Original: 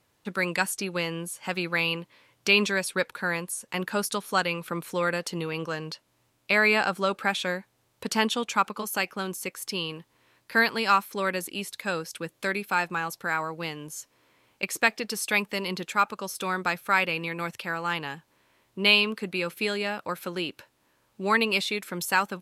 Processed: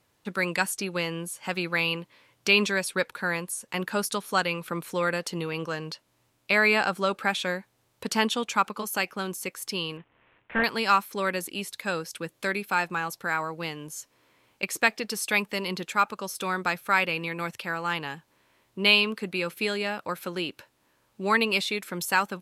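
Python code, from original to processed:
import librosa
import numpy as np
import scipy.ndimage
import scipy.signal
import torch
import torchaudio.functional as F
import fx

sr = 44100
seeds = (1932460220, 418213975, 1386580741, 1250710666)

y = fx.cvsd(x, sr, bps=16000, at=(9.97, 10.64))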